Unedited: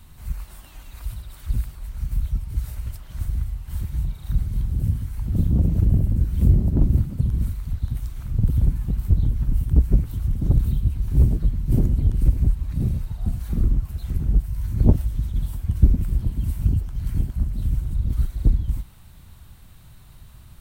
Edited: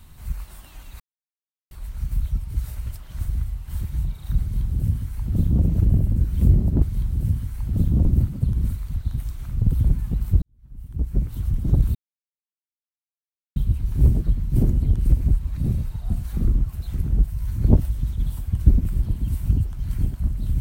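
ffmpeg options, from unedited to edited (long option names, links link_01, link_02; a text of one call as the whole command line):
ffmpeg -i in.wav -filter_complex "[0:a]asplit=7[link_01][link_02][link_03][link_04][link_05][link_06][link_07];[link_01]atrim=end=1,asetpts=PTS-STARTPTS,afade=type=out:start_time=0.996:duration=0.004:curve=hsin[link_08];[link_02]atrim=start=1:end=1.71,asetpts=PTS-STARTPTS,volume=0[link_09];[link_03]atrim=start=1.71:end=6.822,asetpts=PTS-STARTPTS,afade=type=in:duration=0.004:curve=hsin[link_10];[link_04]atrim=start=4.408:end=5.642[link_11];[link_05]atrim=start=6.818:end=9.19,asetpts=PTS-STARTPTS,afade=type=out:start_time=2.368:duration=0.004:curve=hsin[link_12];[link_06]atrim=start=9.19:end=10.72,asetpts=PTS-STARTPTS,afade=type=in:duration=0.98:curve=qua,afade=type=out:start_time=1.526:duration=0.004:curve=hsin,apad=pad_dur=1.61[link_13];[link_07]atrim=start=10.72,asetpts=PTS-STARTPTS,afade=type=in:duration=0.004:curve=hsin[link_14];[link_08][link_09][link_10]concat=n=3:v=0:a=1[link_15];[link_15][link_11]acrossfade=duration=0.004:curve1=hsin:curve2=hsin[link_16];[link_12][link_13][link_14]concat=n=3:v=0:a=1[link_17];[link_16][link_17]acrossfade=duration=0.004:curve1=hsin:curve2=hsin" out.wav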